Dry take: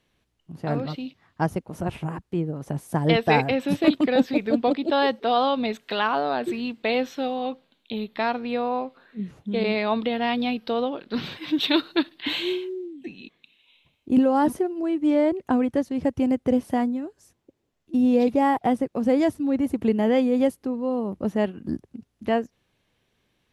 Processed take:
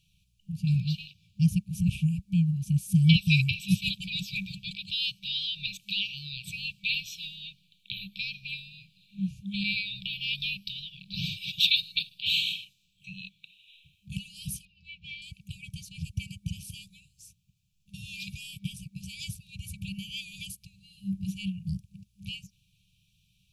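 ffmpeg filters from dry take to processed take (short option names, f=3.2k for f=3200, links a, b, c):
-filter_complex "[0:a]asettb=1/sr,asplit=3[a][b][c];[a]atrim=end=14.654[d];[b]atrim=start=14.65:end=15.22,asetpts=PTS-STARTPTS,afade=t=in:d=0.004:c=qsin,afade=t=out:st=0.566:d=0.004:c=qsin,lowpass=f=4.1k:w=0.5412,lowpass=f=4.1k:w=1.3066[e];[c]atrim=start=15.216[f];[d][e]acrossfade=d=0.004:c1=hsin:c2=qsin[g];[g][f]acrossfade=d=0.004:c1=qsin:c2=hsin,equalizer=f=2.5k:w=0.66:g=-2.5,afftfilt=real='re*(1-between(b*sr/4096,200,2300))':imag='im*(1-between(b*sr/4096,200,2300))':win_size=4096:overlap=0.75,volume=5.5dB"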